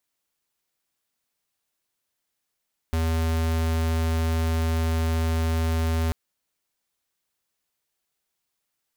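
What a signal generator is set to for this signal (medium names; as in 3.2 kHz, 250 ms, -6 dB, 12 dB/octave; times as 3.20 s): tone square 81.2 Hz -23.5 dBFS 3.19 s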